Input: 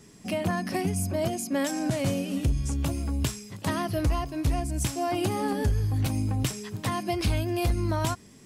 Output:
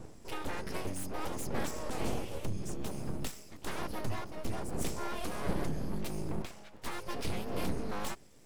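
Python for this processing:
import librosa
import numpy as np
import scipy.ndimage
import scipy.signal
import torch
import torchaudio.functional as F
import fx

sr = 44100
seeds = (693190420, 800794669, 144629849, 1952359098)

y = fx.dmg_wind(x, sr, seeds[0], corner_hz=210.0, level_db=-32.0)
y = fx.bass_treble(y, sr, bass_db=-13, treble_db=-14, at=(6.42, 6.82))
y = np.abs(y)
y = F.gain(torch.from_numpy(y), -7.5).numpy()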